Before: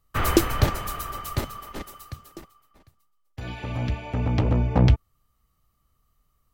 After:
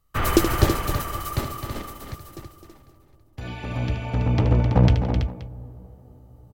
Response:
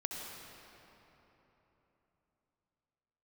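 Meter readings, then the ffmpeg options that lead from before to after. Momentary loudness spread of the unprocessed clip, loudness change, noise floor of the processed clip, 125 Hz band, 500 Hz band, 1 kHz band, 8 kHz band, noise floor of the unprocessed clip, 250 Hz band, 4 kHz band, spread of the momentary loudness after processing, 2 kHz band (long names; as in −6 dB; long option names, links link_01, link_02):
19 LU, +1.5 dB, −56 dBFS, +2.5 dB, +2.5 dB, +2.0 dB, +1.5 dB, −70 dBFS, +2.0 dB, +1.5 dB, 20 LU, +1.5 dB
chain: -filter_complex "[0:a]aecho=1:1:76|167|260|328|525:0.376|0.126|0.376|0.398|0.112,asplit=2[link_01][link_02];[1:a]atrim=start_sample=2205,asetrate=29106,aresample=44100,lowpass=1100[link_03];[link_02][link_03]afir=irnorm=-1:irlink=0,volume=-21.5dB[link_04];[link_01][link_04]amix=inputs=2:normalize=0"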